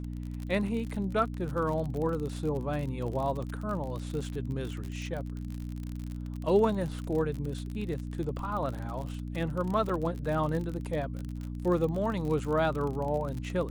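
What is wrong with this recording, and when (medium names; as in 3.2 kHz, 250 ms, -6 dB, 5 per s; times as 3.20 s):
crackle 48 per s -34 dBFS
hum 60 Hz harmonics 5 -37 dBFS
9.89–9.90 s: dropout 5.1 ms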